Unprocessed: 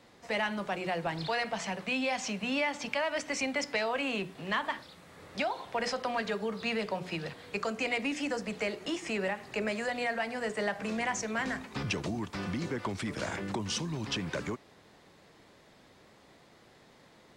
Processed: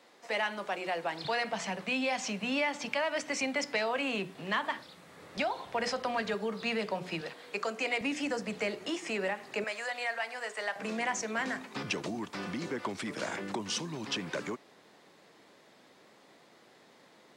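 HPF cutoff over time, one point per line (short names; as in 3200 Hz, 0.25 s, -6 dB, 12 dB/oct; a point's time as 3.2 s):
340 Hz
from 1.25 s 130 Hz
from 5.37 s 43 Hz
from 6.34 s 140 Hz
from 7.21 s 300 Hz
from 8.01 s 100 Hz
from 8.86 s 220 Hz
from 9.64 s 720 Hz
from 10.76 s 210 Hz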